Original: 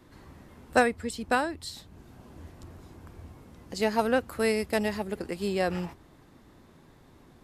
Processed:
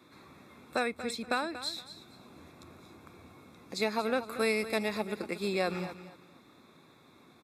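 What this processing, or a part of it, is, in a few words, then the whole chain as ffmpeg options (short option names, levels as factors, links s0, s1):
PA system with an anti-feedback notch: -af "highpass=160,asuperstop=centerf=3000:order=4:qfactor=4,alimiter=limit=0.15:level=0:latency=1:release=223,superequalizer=10b=1.78:12b=2.51:13b=2.82,aecho=1:1:234|468|702:0.224|0.056|0.014,volume=0.75"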